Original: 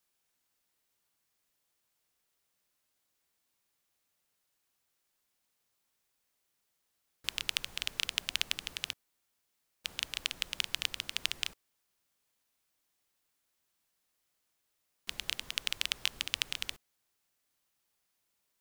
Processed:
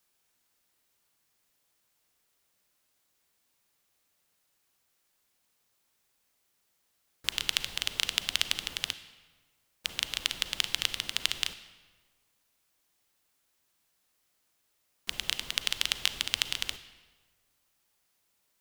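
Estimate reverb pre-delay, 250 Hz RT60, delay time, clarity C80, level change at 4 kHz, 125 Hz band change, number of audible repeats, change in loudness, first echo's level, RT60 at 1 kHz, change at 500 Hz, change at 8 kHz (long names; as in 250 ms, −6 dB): 34 ms, 1.6 s, no echo audible, 14.5 dB, +5.0 dB, +5.5 dB, no echo audible, +4.5 dB, no echo audible, 1.4 s, +5.5 dB, +5.0 dB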